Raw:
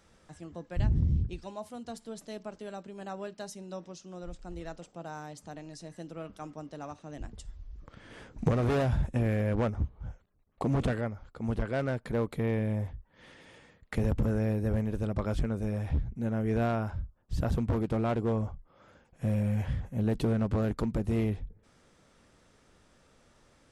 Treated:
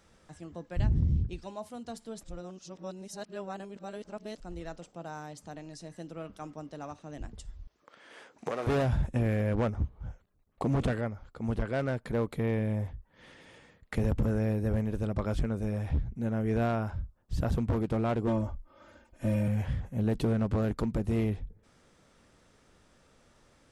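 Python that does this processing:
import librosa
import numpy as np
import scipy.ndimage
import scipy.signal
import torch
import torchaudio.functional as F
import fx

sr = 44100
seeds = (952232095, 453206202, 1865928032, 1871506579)

y = fx.highpass(x, sr, hz=480.0, slope=12, at=(7.67, 8.67))
y = fx.comb(y, sr, ms=3.3, depth=0.97, at=(18.27, 19.48))
y = fx.edit(y, sr, fx.reverse_span(start_s=2.23, length_s=2.17), tone=tone)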